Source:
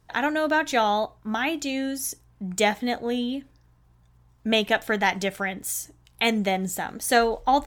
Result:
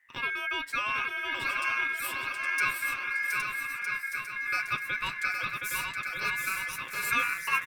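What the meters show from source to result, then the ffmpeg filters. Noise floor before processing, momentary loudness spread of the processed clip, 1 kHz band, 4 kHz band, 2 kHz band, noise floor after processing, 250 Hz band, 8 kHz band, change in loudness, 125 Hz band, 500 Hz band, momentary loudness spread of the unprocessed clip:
-60 dBFS, 5 LU, -8.5 dB, -7.5 dB, +1.0 dB, -41 dBFS, -23.5 dB, -8.0 dB, -5.0 dB, -12.5 dB, -22.5 dB, 9 LU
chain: -filter_complex "[0:a]equalizer=f=2.6k:t=o:w=2.9:g=-14.5,aecho=1:1:7.3:0.48,asplit=2[a][b];[b]aecho=0:1:720|1260|1665|1969|2197:0.631|0.398|0.251|0.158|0.1[c];[a][c]amix=inputs=2:normalize=0,aeval=exprs='val(0)*sin(2*PI*1900*n/s)':c=same,asplit=2[d][e];[e]aecho=0:1:815:0.531[f];[d][f]amix=inputs=2:normalize=0,volume=-2dB"

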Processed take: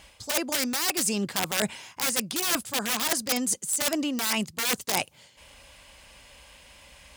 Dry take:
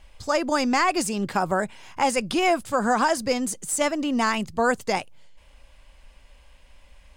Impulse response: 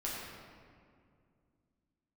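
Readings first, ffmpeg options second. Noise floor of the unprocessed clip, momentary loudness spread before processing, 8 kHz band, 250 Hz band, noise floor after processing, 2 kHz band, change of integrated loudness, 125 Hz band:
-54 dBFS, 5 LU, +4.5 dB, -5.5 dB, -57 dBFS, -4.0 dB, -2.5 dB, -3.5 dB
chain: -af "aeval=exprs='(mod(6.31*val(0)+1,2)-1)/6.31':c=same,highpass=82,highshelf=f=3k:g=8,areverse,acompressor=threshold=-29dB:ratio=6,areverse,volume=5dB"

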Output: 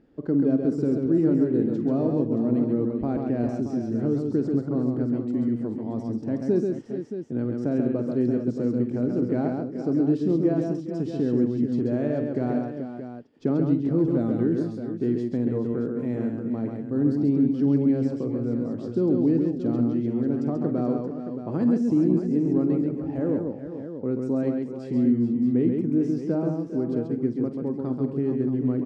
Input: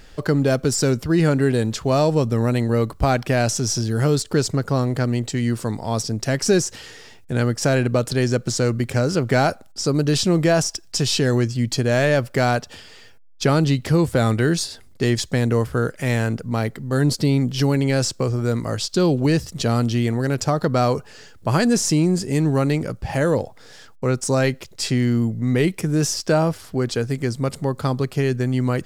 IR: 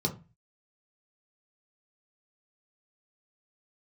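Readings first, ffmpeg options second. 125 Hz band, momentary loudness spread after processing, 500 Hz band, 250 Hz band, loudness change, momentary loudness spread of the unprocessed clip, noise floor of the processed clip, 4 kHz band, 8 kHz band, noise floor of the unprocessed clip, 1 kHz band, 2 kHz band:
-9.5 dB, 7 LU, -6.0 dB, 0.0 dB, -4.5 dB, 6 LU, -36 dBFS, under -25 dB, under -30 dB, -45 dBFS, -14.5 dB, under -20 dB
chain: -af "bandpass=f=280:t=q:w=2.5:csg=0,aecho=1:1:49|135|207|404|432|625:0.251|0.631|0.126|0.168|0.316|0.316"

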